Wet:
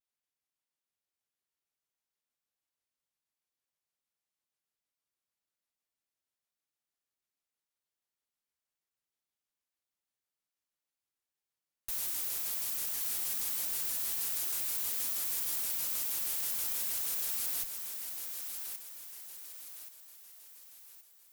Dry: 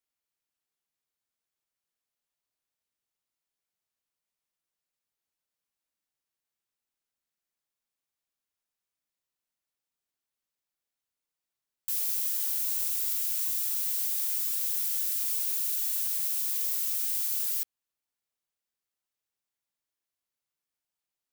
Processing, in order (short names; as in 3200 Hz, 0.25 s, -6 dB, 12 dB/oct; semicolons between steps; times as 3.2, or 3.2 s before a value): flange 0.22 Hz, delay 7.1 ms, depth 10 ms, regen -76%; added harmonics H 6 -25 dB, 8 -18 dB, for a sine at -20.5 dBFS; on a send: thinning echo 1.127 s, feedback 45%, high-pass 170 Hz, level -6 dB; on the sum: shaped vibrato square 6.3 Hz, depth 250 cents